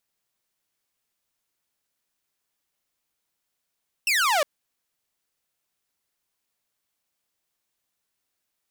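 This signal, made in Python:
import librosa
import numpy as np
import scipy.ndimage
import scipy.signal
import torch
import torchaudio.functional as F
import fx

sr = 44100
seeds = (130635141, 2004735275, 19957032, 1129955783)

y = fx.laser_zap(sr, level_db=-16.5, start_hz=2800.0, end_hz=550.0, length_s=0.36, wave='saw')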